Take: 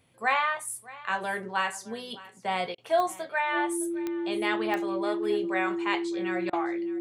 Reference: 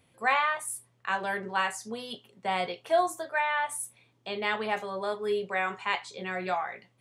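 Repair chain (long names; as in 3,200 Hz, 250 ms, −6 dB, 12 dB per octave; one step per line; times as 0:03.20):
click removal
notch filter 340 Hz, Q 30
repair the gap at 0:02.75/0:06.50, 29 ms
echo removal 613 ms −19.5 dB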